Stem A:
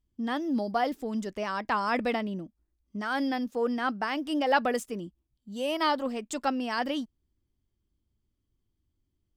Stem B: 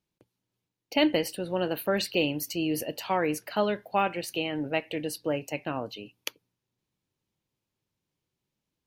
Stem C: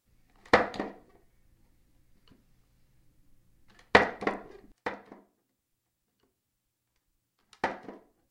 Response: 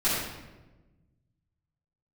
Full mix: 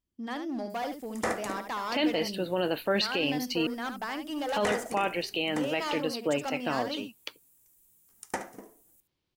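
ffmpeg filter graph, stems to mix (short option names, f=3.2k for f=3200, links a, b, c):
-filter_complex "[0:a]volume=26dB,asoftclip=hard,volume=-26dB,volume=-3.5dB,asplit=2[a][b];[b]volume=-8dB[c];[1:a]highshelf=f=6.2k:t=q:w=1.5:g=-11,adelay=1000,volume=2.5dB,asplit=3[d][e][f];[d]atrim=end=3.67,asetpts=PTS-STARTPTS,afade=t=out:st=3.666:d=0.004:c=hsin[g];[e]atrim=start=3.67:end=4.53,asetpts=PTS-STARTPTS,volume=0[h];[f]atrim=start=4.53,asetpts=PTS-STARTPTS,afade=t=in:d=0.004:c=hsin[i];[g][h][i]concat=n=3:v=0:a=1[j];[2:a]lowshelf=f=240:g=10.5,aexciter=amount=13.6:drive=5.9:freq=6.3k,adelay=700,volume=-4dB,asplit=2[k][l];[l]volume=-14dB[m];[c][m]amix=inputs=2:normalize=0,aecho=0:1:72:1[n];[a][j][k][n]amix=inputs=4:normalize=0,lowshelf=f=120:g=-11,alimiter=limit=-18dB:level=0:latency=1:release=13"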